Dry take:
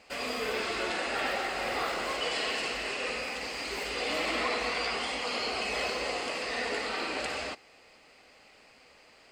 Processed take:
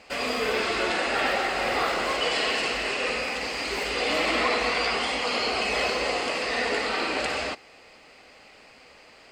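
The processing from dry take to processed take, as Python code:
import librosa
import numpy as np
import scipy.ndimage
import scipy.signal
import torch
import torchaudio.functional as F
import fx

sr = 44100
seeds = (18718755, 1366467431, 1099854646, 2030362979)

y = fx.high_shelf(x, sr, hz=8000.0, db=-5.0)
y = y * 10.0 ** (6.5 / 20.0)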